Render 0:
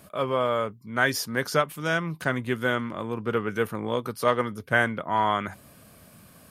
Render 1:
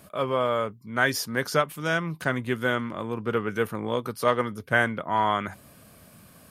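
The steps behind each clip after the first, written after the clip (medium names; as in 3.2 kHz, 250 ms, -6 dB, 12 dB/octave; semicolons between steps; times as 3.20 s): no audible change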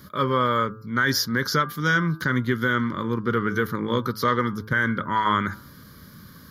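static phaser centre 2.6 kHz, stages 6; peak limiter -18.5 dBFS, peak gain reduction 9 dB; de-hum 108.1 Hz, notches 15; trim +8.5 dB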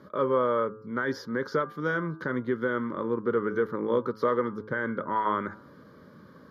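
in parallel at -1 dB: compression, threshold -30 dBFS, peak gain reduction 13 dB; on the sum: band-pass filter 530 Hz, Q 1.4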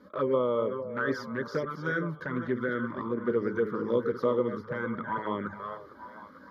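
chunks repeated in reverse 275 ms, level -8 dB; touch-sensitive flanger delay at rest 4.2 ms, full sweep at -21 dBFS; repeats whose band climbs or falls 454 ms, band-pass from 590 Hz, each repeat 0.7 oct, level -10 dB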